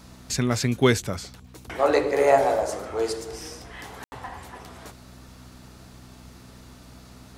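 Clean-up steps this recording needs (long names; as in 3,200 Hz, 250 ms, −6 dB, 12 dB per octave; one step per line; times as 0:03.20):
click removal
hum removal 62.4 Hz, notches 4
ambience match 0:04.04–0:04.12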